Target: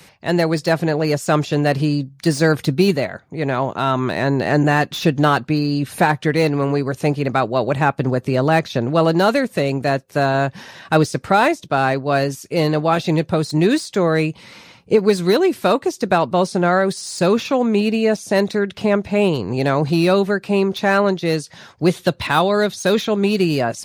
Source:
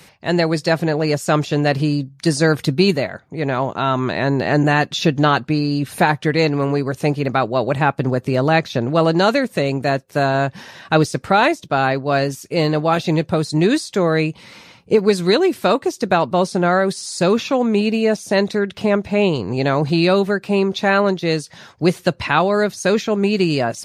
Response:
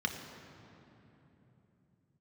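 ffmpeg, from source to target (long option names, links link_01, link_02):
-filter_complex "[0:a]asettb=1/sr,asplit=3[link_01][link_02][link_03];[link_01]atrim=end=21.904[link_04];[link_02]atrim=start=21.9:end=23.37,asetpts=PTS-STARTPTS,afade=type=in:duration=0.004:curve=qsin,afade=type=out:start_time=1.466:duration=0.004:curve=qsin,equalizer=frequency=3600:width=4.1:gain=10[link_05];[link_03]atrim=start=23.366[link_06];[link_04][link_05]acrossfade=duration=0.004:curve1=hsin:curve2=qsin[link_07];[link_07][link_06]acrossfade=duration=0.004:curve1=qsin:curve2=hsin,acrossover=split=770|1900[link_08][link_09][link_10];[link_10]asoftclip=type=hard:threshold=-24.5dB[link_11];[link_08][link_09][link_11]amix=inputs=3:normalize=0"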